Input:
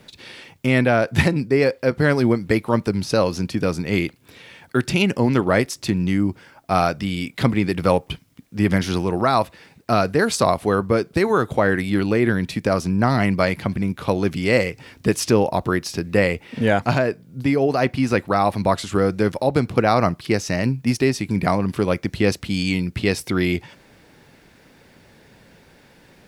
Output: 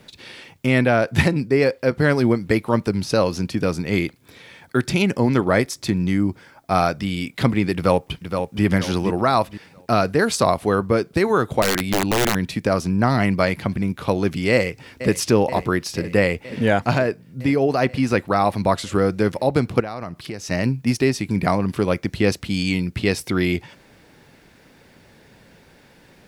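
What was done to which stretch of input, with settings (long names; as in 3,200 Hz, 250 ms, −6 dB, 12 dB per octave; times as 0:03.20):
0:03.90–0:07.02: notch filter 2,800 Hz
0:07.74–0:08.63: delay throw 470 ms, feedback 35%, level −6.5 dB
0:11.62–0:12.35: wrap-around overflow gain 12 dB
0:14.52–0:15.15: delay throw 480 ms, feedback 75%, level −13 dB
0:19.80–0:20.51: downward compressor 4 to 1, threshold −28 dBFS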